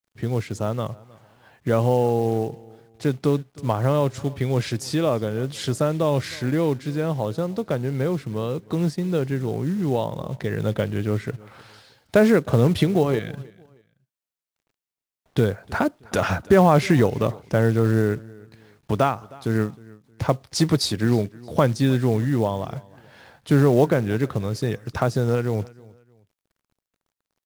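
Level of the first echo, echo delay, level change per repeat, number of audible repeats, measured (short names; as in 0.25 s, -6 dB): -23.0 dB, 0.312 s, -10.0 dB, 2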